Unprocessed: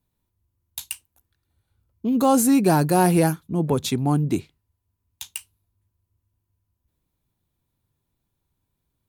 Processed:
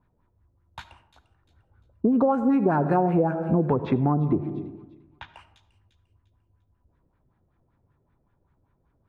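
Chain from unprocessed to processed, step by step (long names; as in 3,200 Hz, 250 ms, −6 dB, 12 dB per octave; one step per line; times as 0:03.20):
auto-filter low-pass sine 5.2 Hz 510–1,700 Hz
dynamic equaliser 4,400 Hz, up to −5 dB, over −42 dBFS, Q 1.2
delay with a high-pass on its return 348 ms, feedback 32%, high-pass 3,600 Hz, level −13 dB
comb and all-pass reverb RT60 1 s, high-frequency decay 0.3×, pre-delay 30 ms, DRR 13.5 dB
downward compressor 12 to 1, threshold −26 dBFS, peak gain reduction 17.5 dB
0:03.82–0:05.34: high-frequency loss of the air 210 metres
level +8 dB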